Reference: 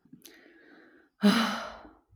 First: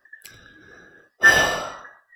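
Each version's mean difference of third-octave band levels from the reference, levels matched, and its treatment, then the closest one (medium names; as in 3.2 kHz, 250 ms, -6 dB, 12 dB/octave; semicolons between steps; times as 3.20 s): 4.5 dB: every band turned upside down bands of 2 kHz; trim +8 dB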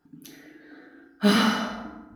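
3.5 dB: FDN reverb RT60 1 s, low-frequency decay 1.45×, high-frequency decay 0.6×, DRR 1.5 dB; trim +3 dB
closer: second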